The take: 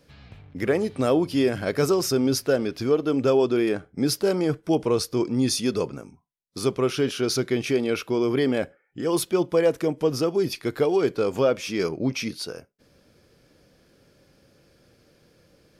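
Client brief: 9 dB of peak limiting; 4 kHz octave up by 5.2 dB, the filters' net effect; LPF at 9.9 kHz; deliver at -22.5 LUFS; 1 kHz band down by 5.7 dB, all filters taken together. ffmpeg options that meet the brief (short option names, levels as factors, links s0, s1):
-af "lowpass=9900,equalizer=f=1000:t=o:g=-8.5,equalizer=f=4000:t=o:g=7.5,volume=1.68,alimiter=limit=0.224:level=0:latency=1"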